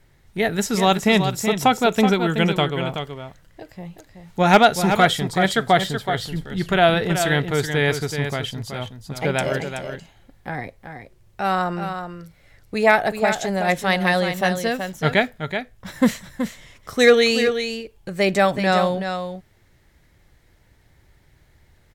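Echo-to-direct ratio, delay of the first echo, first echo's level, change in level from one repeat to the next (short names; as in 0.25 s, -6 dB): -8.0 dB, 0.376 s, -8.0 dB, no steady repeat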